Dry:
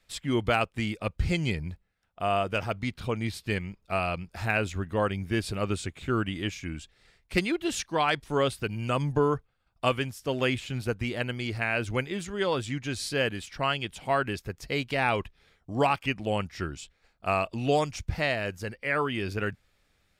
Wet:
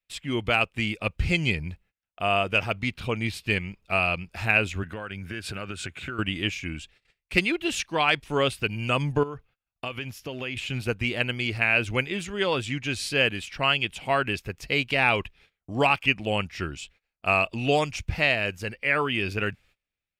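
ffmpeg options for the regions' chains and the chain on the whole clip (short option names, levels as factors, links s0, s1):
-filter_complex "[0:a]asettb=1/sr,asplit=3[s0][s1][s2];[s0]atrim=end=4.834[s3];[s1]atrim=start=4.83:end=6.19,asetpts=PTS-STARTPTS,afade=t=in:d=0.004:c=qsin,afade=t=out:st=1.356:d=0.004:c=qsin,highpass=f=57:w=0.5412,highpass=f=57:w=1.3066,equalizer=f=1500:t=o:w=0.28:g=13.5,acompressor=threshold=0.0251:ratio=12:attack=3.2:release=140:knee=1:detection=peak[s4];[s2]atrim=start=6.186[s5];[s3][s4]acrossfade=d=0.004:c1=hsin:c2=qsin[s6];[s6][s5]acrossfade=d=0.004:c1=qsin:c2=hsin,asettb=1/sr,asplit=3[s7][s8][s9];[s7]atrim=end=9.234[s10];[s8]atrim=start=9.23:end=10.57,asetpts=PTS-STARTPTS,afade=t=in:d=0.004:c=qsin,afade=t=out:st=1.336:d=0.004:c=qsin,equalizer=f=8400:w=5.7:g=-14.5,acompressor=threshold=0.0282:ratio=20:attack=3.2:release=140:knee=1:detection=peak[s11];[s9]atrim=start=10.566[s12];[s10][s11]acrossfade=d=0.004:c1=hsin:c2=qsin[s13];[s13][s12]acrossfade=d=0.004:c1=qsin:c2=hsin,agate=range=0.0794:threshold=0.00141:ratio=16:detection=peak,equalizer=f=2600:w=2.3:g=9,dynaudnorm=f=260:g=5:m=1.5,volume=0.794"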